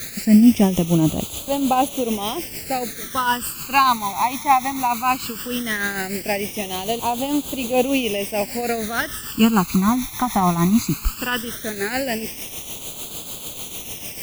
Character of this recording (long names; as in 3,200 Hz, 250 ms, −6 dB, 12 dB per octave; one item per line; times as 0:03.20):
a quantiser's noise floor 6 bits, dither triangular
phaser sweep stages 12, 0.17 Hz, lowest notch 500–1,800 Hz
tremolo triangle 6.7 Hz, depth 60%